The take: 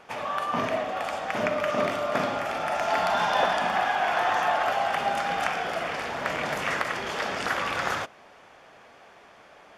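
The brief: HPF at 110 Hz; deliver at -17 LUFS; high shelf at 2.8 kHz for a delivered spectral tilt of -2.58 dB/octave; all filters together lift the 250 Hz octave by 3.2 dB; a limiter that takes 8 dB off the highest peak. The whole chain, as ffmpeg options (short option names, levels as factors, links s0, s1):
-af "highpass=110,equalizer=f=250:t=o:g=4,highshelf=f=2800:g=7.5,volume=2.82,alimiter=limit=0.473:level=0:latency=1"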